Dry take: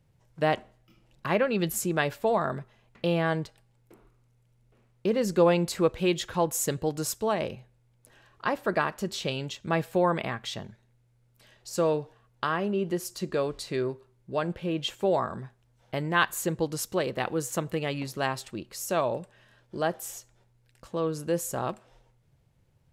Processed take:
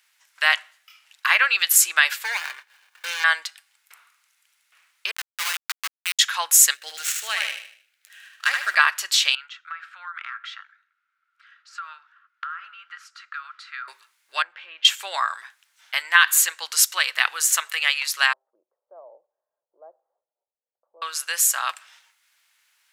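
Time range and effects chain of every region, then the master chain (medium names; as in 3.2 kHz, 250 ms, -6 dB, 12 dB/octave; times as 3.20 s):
2.24–3.24 s: median filter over 41 samples + upward compressor, threshold -41 dBFS + comb of notches 660 Hz
5.11–6.19 s: high-pass 690 Hz 24 dB/octave + treble shelf 4.4 kHz -4 dB + Schmitt trigger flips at -28 dBFS
6.74–8.75 s: median filter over 9 samples + peaking EQ 1 kHz -15 dB 0.73 oct + feedback delay 76 ms, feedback 39%, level -4 dB
9.35–13.88 s: ladder band-pass 1.4 kHz, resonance 85% + compression, threshold -43 dBFS
14.42–14.85 s: tape spacing loss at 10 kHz 34 dB + compression 4:1, threshold -34 dBFS
18.33–21.02 s: steep low-pass 590 Hz + bass shelf 190 Hz -11 dB
whole clip: high-pass 1.4 kHz 24 dB/octave; loudness maximiser +18 dB; trim -1 dB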